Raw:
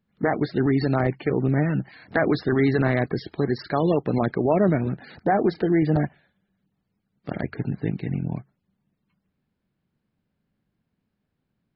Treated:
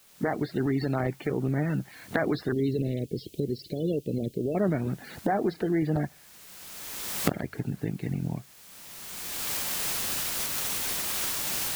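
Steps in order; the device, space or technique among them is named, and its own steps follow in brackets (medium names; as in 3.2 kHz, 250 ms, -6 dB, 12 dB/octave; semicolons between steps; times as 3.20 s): cheap recorder with automatic gain (white noise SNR 28 dB; recorder AGC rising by 23 dB/s); 2.52–4.55 s: Chebyshev band-stop 510–2800 Hz, order 3; trim -6 dB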